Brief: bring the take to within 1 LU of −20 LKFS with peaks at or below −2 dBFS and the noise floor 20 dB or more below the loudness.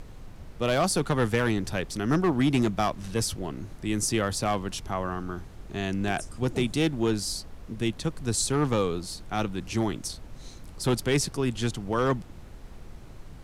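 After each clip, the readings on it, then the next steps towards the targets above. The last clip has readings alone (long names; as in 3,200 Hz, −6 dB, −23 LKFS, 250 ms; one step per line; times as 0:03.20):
share of clipped samples 0.7%; peaks flattened at −17.0 dBFS; background noise floor −45 dBFS; target noise floor −48 dBFS; integrated loudness −28.0 LKFS; sample peak −17.0 dBFS; target loudness −20.0 LKFS
→ clipped peaks rebuilt −17 dBFS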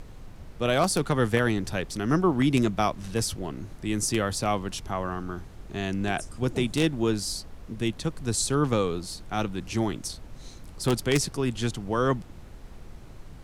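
share of clipped samples 0.0%; background noise floor −45 dBFS; target noise floor −48 dBFS
→ noise reduction from a noise print 6 dB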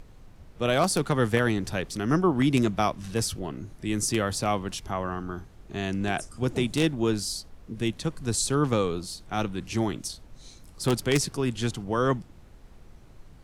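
background noise floor −51 dBFS; integrated loudness −27.5 LKFS; sample peak −8.0 dBFS; target loudness −20.0 LKFS
→ level +7.5 dB
brickwall limiter −2 dBFS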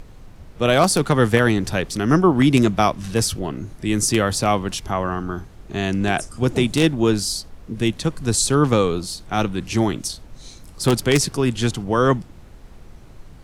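integrated loudness −20.0 LKFS; sample peak −2.0 dBFS; background noise floor −43 dBFS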